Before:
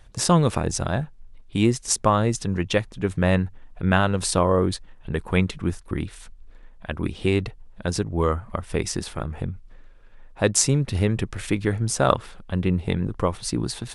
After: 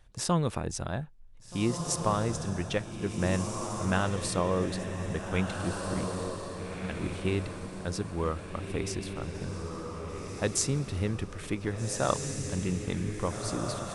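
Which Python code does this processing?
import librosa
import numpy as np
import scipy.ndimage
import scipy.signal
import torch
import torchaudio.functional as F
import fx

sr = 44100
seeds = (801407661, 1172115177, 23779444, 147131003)

y = fx.echo_diffused(x, sr, ms=1662, feedback_pct=41, wet_db=-4.5)
y = y * librosa.db_to_amplitude(-9.0)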